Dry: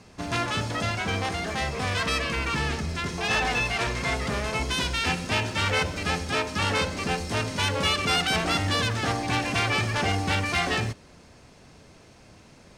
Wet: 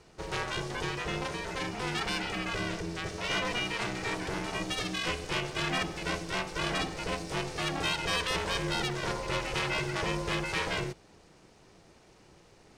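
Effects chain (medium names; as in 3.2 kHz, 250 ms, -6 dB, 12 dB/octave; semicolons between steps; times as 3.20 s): ring modulator 250 Hz; trim -3.5 dB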